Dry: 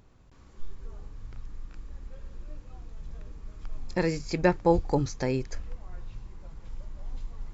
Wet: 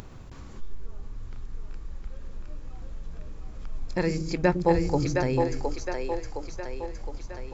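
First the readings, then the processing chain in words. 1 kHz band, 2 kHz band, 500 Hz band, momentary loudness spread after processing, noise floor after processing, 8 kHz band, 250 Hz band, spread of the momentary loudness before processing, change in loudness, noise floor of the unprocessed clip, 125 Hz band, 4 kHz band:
+2.0 dB, +2.0 dB, +2.0 dB, 21 LU, -42 dBFS, n/a, +2.0 dB, 22 LU, 0.0 dB, -54 dBFS, +2.5 dB, +2.0 dB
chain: split-band echo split 330 Hz, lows 0.105 s, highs 0.714 s, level -3.5 dB; upward compressor, threshold -31 dBFS

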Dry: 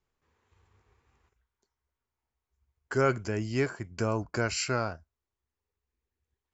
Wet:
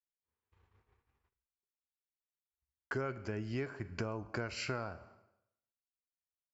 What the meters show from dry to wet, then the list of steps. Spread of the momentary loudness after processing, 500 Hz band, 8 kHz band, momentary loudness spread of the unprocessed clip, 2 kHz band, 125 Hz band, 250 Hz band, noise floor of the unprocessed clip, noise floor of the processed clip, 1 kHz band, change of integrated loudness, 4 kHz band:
4 LU, -10.5 dB, n/a, 6 LU, -8.0 dB, -8.5 dB, -8.5 dB, under -85 dBFS, under -85 dBFS, -10.5 dB, -9.5 dB, -9.0 dB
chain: expander -59 dBFS; LPF 4000 Hz 12 dB/oct; Schroeder reverb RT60 0.77 s, combs from 30 ms, DRR 16.5 dB; compressor 6:1, threshold -36 dBFS, peak gain reduction 15.5 dB; gain +1 dB

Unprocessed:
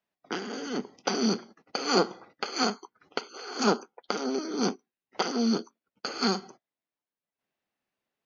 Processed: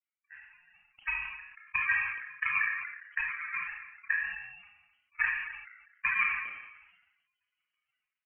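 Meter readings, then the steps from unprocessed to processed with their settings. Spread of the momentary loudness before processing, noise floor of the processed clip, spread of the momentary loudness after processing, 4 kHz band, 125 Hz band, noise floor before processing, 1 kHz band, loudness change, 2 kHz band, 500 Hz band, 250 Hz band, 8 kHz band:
11 LU, under -85 dBFS, 18 LU, under -20 dB, under -20 dB, under -85 dBFS, -9.0 dB, -1.5 dB, +9.5 dB, under -40 dB, under -40 dB, n/a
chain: spectral contrast raised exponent 3.6; inverse Chebyshev high-pass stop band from 580 Hz, stop band 40 dB; AGC gain up to 13 dB; limiter -18 dBFS, peak gain reduction 8 dB; added harmonics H 3 -27 dB, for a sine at -18 dBFS; sample-and-hold 17×; frequency shift +58 Hz; speakerphone echo 0.26 s, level -20 dB; Schroeder reverb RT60 0.41 s, combs from 27 ms, DRR 7.5 dB; inverted band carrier 3100 Hz; sustainer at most 53 dB/s

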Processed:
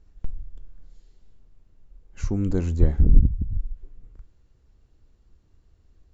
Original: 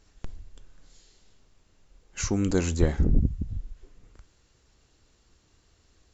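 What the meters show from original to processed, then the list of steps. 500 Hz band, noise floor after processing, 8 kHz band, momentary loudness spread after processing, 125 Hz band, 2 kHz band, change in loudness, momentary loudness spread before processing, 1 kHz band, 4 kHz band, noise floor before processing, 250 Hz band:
-3.0 dB, -60 dBFS, n/a, 21 LU, +4.0 dB, -9.0 dB, +3.0 dB, 13 LU, -6.0 dB, under -10 dB, -65 dBFS, -0.5 dB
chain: tilt -3 dB/oct; gain -6.5 dB

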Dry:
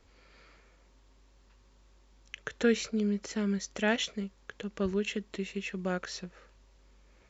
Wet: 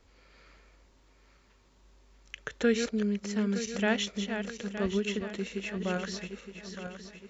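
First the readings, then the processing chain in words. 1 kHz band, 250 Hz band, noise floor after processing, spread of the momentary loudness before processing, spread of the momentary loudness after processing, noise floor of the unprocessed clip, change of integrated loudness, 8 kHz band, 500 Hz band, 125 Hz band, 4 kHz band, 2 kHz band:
+1.0 dB, +1.5 dB, -63 dBFS, 14 LU, 15 LU, -62 dBFS, +0.5 dB, n/a, +1.0 dB, +1.5 dB, +1.0 dB, +1.0 dB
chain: regenerating reverse delay 0.458 s, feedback 63%, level -7.5 dB

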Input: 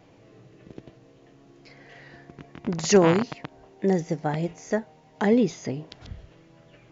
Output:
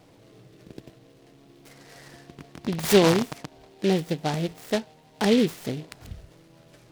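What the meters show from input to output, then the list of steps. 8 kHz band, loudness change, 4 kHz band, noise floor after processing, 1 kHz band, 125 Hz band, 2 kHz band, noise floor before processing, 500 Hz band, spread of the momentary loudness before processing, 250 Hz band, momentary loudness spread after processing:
n/a, 0.0 dB, +6.5 dB, -55 dBFS, -0.5 dB, 0.0 dB, +1.0 dB, -55 dBFS, 0.0 dB, 20 LU, 0.0 dB, 17 LU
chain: noise-modulated delay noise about 2900 Hz, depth 0.081 ms

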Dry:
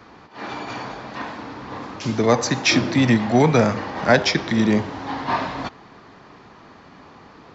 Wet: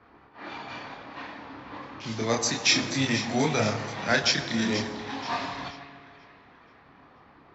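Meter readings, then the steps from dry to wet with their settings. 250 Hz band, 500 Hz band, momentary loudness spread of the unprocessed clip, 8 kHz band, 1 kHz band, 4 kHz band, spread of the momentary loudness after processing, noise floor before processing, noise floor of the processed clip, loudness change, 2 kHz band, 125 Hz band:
-10.0 dB, -10.0 dB, 17 LU, n/a, -8.5 dB, -1.0 dB, 18 LU, -47 dBFS, -56 dBFS, -6.5 dB, -4.5 dB, -10.0 dB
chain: chorus voices 4, 0.78 Hz, delay 28 ms, depth 2.2 ms; high shelf 2200 Hz +11.5 dB; resonator 140 Hz, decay 1.7 s, mix 60%; split-band echo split 1700 Hz, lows 0.15 s, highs 0.482 s, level -11.5 dB; low-pass opened by the level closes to 1600 Hz, open at -25 dBFS

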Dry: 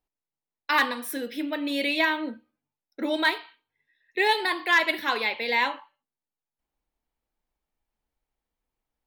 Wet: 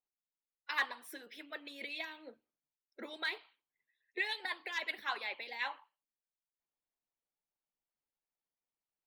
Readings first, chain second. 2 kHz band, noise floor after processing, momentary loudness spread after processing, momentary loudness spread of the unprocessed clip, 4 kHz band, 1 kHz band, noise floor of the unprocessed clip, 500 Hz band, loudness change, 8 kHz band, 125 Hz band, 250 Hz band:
-13.5 dB, under -85 dBFS, 15 LU, 13 LU, -13.0 dB, -16.5 dB, under -85 dBFS, -19.5 dB, -14.5 dB, -15.0 dB, n/a, -23.0 dB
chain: bell 61 Hz -14 dB 2.2 oct; harmonic-percussive split harmonic -17 dB; bell 15000 Hz -10.5 dB 1.4 oct; gain -7 dB

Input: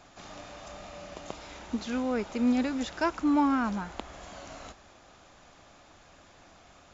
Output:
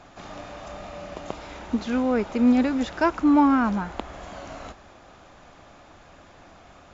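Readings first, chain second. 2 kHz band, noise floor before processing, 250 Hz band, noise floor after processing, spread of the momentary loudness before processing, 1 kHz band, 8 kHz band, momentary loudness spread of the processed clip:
+5.0 dB, -57 dBFS, +7.0 dB, -51 dBFS, 20 LU, +6.5 dB, n/a, 21 LU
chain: high shelf 3600 Hz -10 dB; gain +7 dB

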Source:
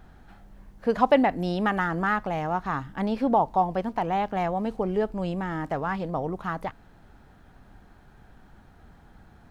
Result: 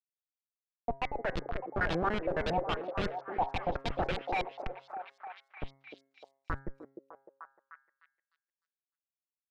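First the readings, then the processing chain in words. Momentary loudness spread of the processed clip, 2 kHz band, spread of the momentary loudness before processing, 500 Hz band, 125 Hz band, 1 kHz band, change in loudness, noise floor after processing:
21 LU, -6.0 dB, 9 LU, -9.0 dB, -8.5 dB, -10.0 dB, -8.5 dB, under -85 dBFS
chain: random spectral dropouts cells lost 74%; dynamic EQ 4400 Hz, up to +7 dB, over -54 dBFS, Q 0.88; in parallel at -1 dB: compressor 12:1, threshold -39 dBFS, peak gain reduction 24 dB; on the sum: high-pass sweep 470 Hz -> 2200 Hz, 4.13–4.8; Schmitt trigger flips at -28.5 dBFS; LFO low-pass saw up 3.6 Hz 430–4600 Hz; de-hum 135.9 Hz, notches 16; on a send: delay with a stepping band-pass 0.303 s, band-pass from 390 Hz, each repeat 0.7 oct, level -3 dB

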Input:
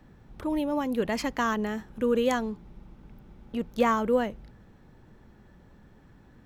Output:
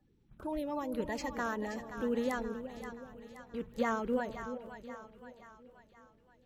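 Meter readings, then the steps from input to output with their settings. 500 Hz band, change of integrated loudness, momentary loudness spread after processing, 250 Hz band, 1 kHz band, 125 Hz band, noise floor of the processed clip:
-8.0 dB, -9.0 dB, 17 LU, -8.0 dB, -8.0 dB, -8.0 dB, -67 dBFS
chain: bin magnitudes rounded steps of 30 dB; gate -46 dBFS, range -9 dB; low shelf 160 Hz +3 dB; split-band echo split 710 Hz, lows 0.375 s, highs 0.526 s, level -9.5 dB; gain -8.5 dB

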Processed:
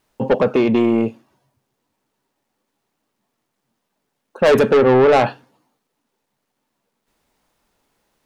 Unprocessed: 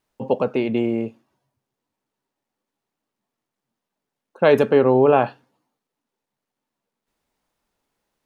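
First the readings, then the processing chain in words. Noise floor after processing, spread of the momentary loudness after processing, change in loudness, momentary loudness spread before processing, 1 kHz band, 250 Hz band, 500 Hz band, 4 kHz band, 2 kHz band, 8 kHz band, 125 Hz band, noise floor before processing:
-76 dBFS, 9 LU, +3.5 dB, 12 LU, +3.5 dB, +4.5 dB, +3.0 dB, +6.5 dB, +5.0 dB, n/a, +3.0 dB, -85 dBFS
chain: soft clip -17.5 dBFS, distortion -8 dB; gain +9 dB

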